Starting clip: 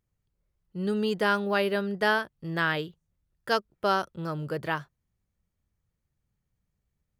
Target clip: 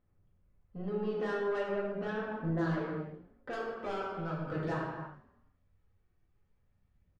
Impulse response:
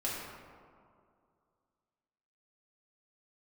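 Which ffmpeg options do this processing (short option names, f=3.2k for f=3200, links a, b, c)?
-filter_complex "[0:a]asetnsamples=n=441:p=0,asendcmd='1.63 lowpass f 1300;3.53 lowpass f 3200',lowpass=2.1k,acompressor=threshold=-36dB:ratio=4,asoftclip=type=tanh:threshold=-33.5dB,aphaser=in_gain=1:out_gain=1:delay=2.7:decay=0.41:speed=0.41:type=sinusoidal,asplit=4[a][b][c][d];[b]adelay=146,afreqshift=39,volume=-23.5dB[e];[c]adelay=292,afreqshift=78,volume=-29.3dB[f];[d]adelay=438,afreqshift=117,volume=-35.2dB[g];[a][e][f][g]amix=inputs=4:normalize=0[h];[1:a]atrim=start_sample=2205,afade=t=out:st=0.43:d=0.01,atrim=end_sample=19404[i];[h][i]afir=irnorm=-1:irlink=0"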